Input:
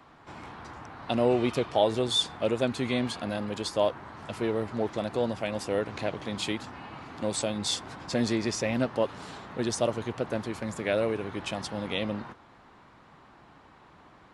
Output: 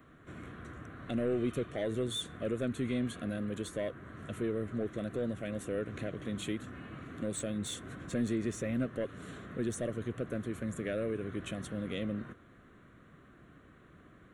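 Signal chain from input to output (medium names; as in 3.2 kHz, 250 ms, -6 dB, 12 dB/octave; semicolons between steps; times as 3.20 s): peaking EQ 2.5 kHz -9 dB 0.92 oct; in parallel at -2 dB: compression, threshold -35 dBFS, peak gain reduction 15.5 dB; on the sum: saturation -17.5 dBFS, distortion -17 dB; static phaser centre 2.1 kHz, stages 4; trim -3.5 dB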